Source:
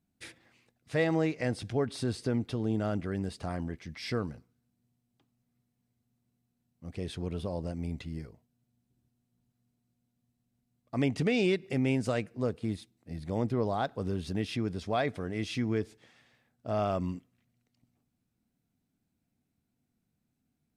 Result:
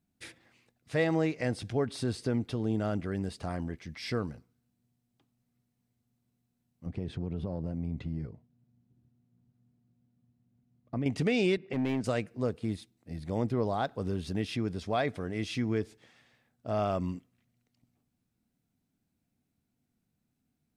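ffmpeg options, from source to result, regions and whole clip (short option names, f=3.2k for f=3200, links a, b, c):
-filter_complex "[0:a]asettb=1/sr,asplit=3[a][b][c];[a]atrim=end=6.864[d];[b]atrim=start=6.86:end=11.06,asetpts=PTS-STARTPTS,afade=t=in:d=0.004:c=qsin,afade=t=out:st=4.196:d=0.004:c=qsin,highpass=130,aemphasis=mode=reproduction:type=riaa,acompressor=threshold=-30dB:ratio=4:attack=3.2:release=140:knee=1:detection=peak[e];[c]atrim=start=11.056[f];[d][e]acrossfade=d=0.004:c1=hsin:c2=qsin[g];[g][f]acrossfade=d=0.004:c1=qsin:c2=hsin,asettb=1/sr,asplit=3[h][i][j];[h]atrim=end=11.574[k];[i]atrim=start=11.57:end=12.04,asetpts=PTS-STARTPTS,afade=t=in:d=0.004:c=qsin,afade=t=out:st=0.466:d=0.004:c=qsin,highpass=130,lowpass=2.9k,asoftclip=type=hard:threshold=-25dB[l];[j]atrim=start=12.036[m];[k][l]acrossfade=d=0.004:c1=hsin:c2=qsin[n];[n][m]acrossfade=d=0.004:c1=qsin:c2=hsin"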